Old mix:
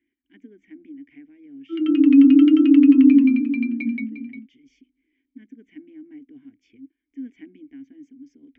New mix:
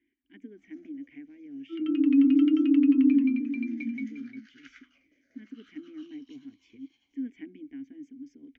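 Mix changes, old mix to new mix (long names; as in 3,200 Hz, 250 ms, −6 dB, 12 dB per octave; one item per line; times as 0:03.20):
first sound: unmuted
second sound −8.5 dB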